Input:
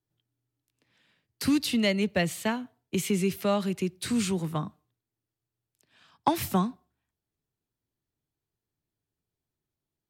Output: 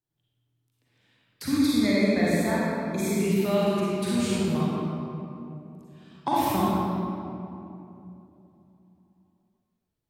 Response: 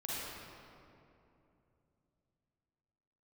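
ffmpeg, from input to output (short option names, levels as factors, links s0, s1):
-filter_complex "[0:a]asplit=3[s0][s1][s2];[s0]afade=t=out:st=1.42:d=0.02[s3];[s1]asuperstop=centerf=2900:order=12:qfactor=4.2,afade=t=in:st=1.42:d=0.02,afade=t=out:st=3.18:d=0.02[s4];[s2]afade=t=in:st=3.18:d=0.02[s5];[s3][s4][s5]amix=inputs=3:normalize=0[s6];[1:a]atrim=start_sample=2205[s7];[s6][s7]afir=irnorm=-1:irlink=0"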